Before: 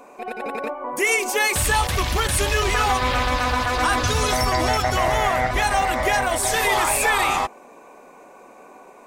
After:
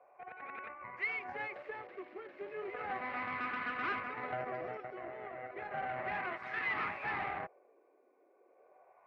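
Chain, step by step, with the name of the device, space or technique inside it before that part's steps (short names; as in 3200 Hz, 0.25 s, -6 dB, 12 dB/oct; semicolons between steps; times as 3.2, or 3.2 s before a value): 4–4.53 RIAA curve playback; HPF 640 Hz 12 dB/oct; wah-wah guitar rig (wah 0.34 Hz 320–1300 Hz, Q 2.1; tube stage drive 25 dB, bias 0.75; speaker cabinet 96–3500 Hz, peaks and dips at 360 Hz +5 dB, 930 Hz -9 dB, 2100 Hz +7 dB, 3400 Hz -8 dB); gain -5 dB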